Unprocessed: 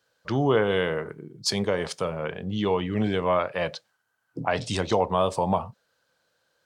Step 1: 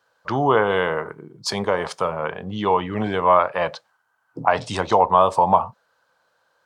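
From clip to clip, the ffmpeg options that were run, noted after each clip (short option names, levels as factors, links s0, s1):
-af "equalizer=f=990:w=0.96:g=13,volume=0.891"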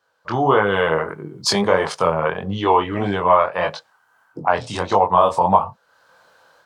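-af "dynaudnorm=f=200:g=3:m=5.01,flanger=delay=20:depth=5.1:speed=1.6,volume=1.19"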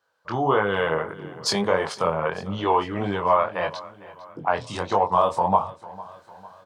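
-af "aecho=1:1:452|904|1356|1808:0.112|0.055|0.0269|0.0132,volume=0.562"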